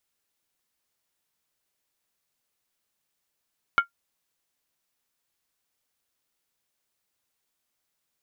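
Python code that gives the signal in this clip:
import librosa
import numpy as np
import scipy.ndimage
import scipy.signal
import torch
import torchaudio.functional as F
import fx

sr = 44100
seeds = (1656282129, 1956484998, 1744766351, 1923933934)

y = fx.strike_skin(sr, length_s=0.63, level_db=-11, hz=1390.0, decay_s=0.11, tilt_db=9, modes=5)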